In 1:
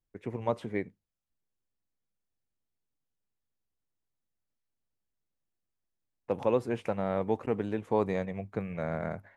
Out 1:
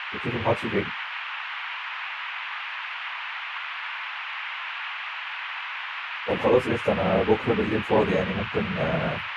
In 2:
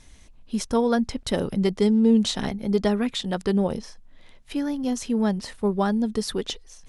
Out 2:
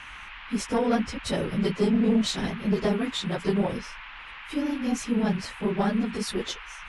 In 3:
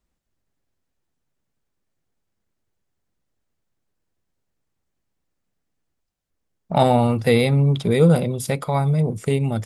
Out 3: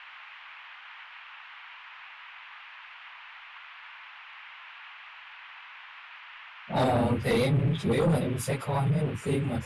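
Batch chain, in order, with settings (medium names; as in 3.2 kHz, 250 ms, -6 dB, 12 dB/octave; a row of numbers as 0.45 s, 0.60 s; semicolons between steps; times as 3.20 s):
phase randomisation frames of 50 ms; band noise 880–2900 Hz -41 dBFS; Chebyshev shaper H 5 -11 dB, 6 -21 dB, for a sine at -2.5 dBFS; normalise loudness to -27 LUFS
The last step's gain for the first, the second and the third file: 0.0 dB, -9.5 dB, -13.5 dB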